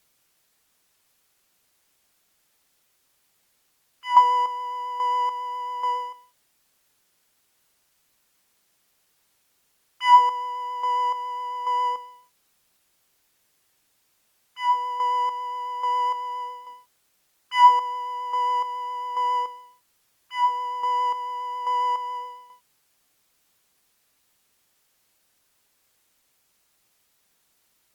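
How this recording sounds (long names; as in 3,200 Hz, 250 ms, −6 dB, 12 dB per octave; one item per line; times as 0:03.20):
chopped level 1.2 Hz, depth 60%, duty 35%
a quantiser's noise floor 12 bits, dither triangular
Opus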